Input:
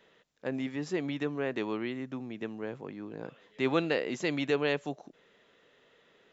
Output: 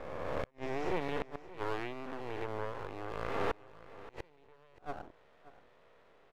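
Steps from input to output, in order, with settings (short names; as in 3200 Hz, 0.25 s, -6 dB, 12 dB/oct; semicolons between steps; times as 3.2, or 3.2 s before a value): spectral swells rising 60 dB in 2.04 s; band-pass 750 Hz, Q 1.6; flipped gate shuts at -26 dBFS, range -33 dB; half-wave rectifier; on a send: echo 0.577 s -17.5 dB; on the sum: gain +7 dB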